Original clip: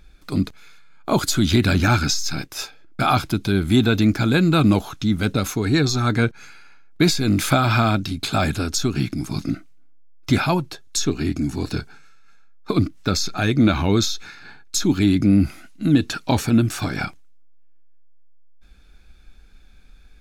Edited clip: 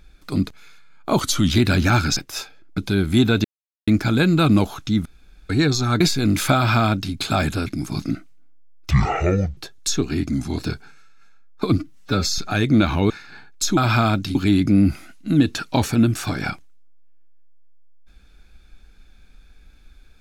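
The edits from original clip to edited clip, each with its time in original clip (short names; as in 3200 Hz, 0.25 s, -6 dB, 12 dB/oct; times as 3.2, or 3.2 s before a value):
1.2–1.48 speed 92%
2.14–2.39 cut
3–3.35 cut
4.02 insert silence 0.43 s
5.2–5.64 room tone
6.15–7.03 cut
7.58–8.16 copy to 14.9
8.69–9.06 cut
10.3–10.66 speed 54%
11.38–11.65 speed 93%
12.85–13.25 stretch 1.5×
13.97–14.23 cut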